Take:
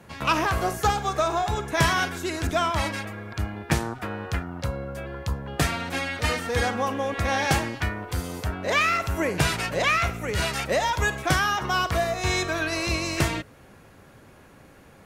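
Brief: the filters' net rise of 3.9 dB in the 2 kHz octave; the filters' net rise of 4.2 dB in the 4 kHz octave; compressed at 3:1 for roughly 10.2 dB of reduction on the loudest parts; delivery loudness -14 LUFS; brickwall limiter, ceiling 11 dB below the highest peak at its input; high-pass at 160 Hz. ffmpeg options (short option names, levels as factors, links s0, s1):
-af "highpass=160,equalizer=f=2000:t=o:g=4,equalizer=f=4000:t=o:g=4,acompressor=threshold=0.0355:ratio=3,volume=7.5,alimiter=limit=0.668:level=0:latency=1"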